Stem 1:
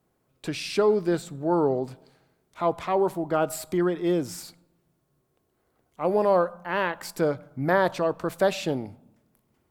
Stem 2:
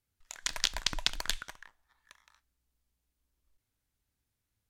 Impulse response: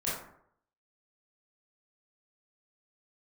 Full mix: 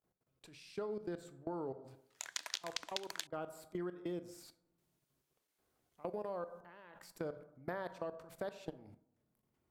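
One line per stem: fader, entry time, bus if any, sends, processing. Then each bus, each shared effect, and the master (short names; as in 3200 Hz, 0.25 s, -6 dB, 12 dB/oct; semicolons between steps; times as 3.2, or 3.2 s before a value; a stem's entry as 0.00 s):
-10.5 dB, 0.00 s, send -18 dB, level quantiser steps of 24 dB
+1.0 dB, 1.90 s, muted 3.27–4.78, no send, HPF 290 Hz 24 dB/oct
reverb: on, RT60 0.65 s, pre-delay 18 ms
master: compressor 5:1, threshold -38 dBFS, peak gain reduction 15.5 dB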